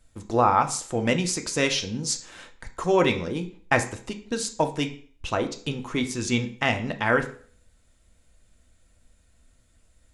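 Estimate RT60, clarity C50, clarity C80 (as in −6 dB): 0.50 s, 12.5 dB, 16.5 dB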